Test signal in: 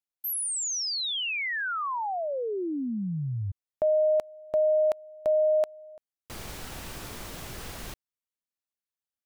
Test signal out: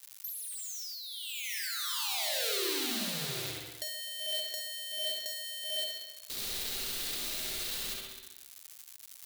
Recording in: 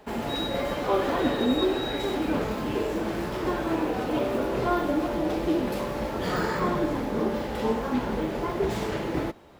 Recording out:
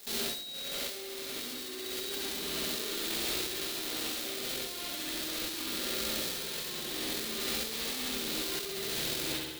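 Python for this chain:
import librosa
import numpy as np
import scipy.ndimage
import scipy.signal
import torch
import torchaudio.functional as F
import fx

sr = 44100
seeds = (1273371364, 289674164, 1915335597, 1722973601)

p1 = fx.halfwave_hold(x, sr)
p2 = fx.graphic_eq_15(p1, sr, hz=(100, 400, 1000, 4000), db=(-10, 4, -5, 10))
p3 = p2 + fx.echo_feedback(p2, sr, ms=67, feedback_pct=58, wet_db=-4.5, dry=0)
p4 = fx.rev_spring(p3, sr, rt60_s=1.0, pass_ms=(54, 59), chirp_ms=45, drr_db=-1.0)
p5 = fx.dmg_crackle(p4, sr, seeds[0], per_s=290.0, level_db=-33.0)
p6 = scipy.signal.lfilter([1.0, -0.9], [1.0], p5)
p7 = fx.over_compress(p6, sr, threshold_db=-33.0, ratio=-1.0)
y = F.gain(torch.from_numpy(p7), -3.5).numpy()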